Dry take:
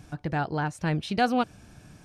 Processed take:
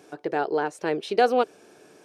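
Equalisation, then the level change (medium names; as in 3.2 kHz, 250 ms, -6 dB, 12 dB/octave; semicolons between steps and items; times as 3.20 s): resonant high-pass 410 Hz, resonance Q 4.9; 0.0 dB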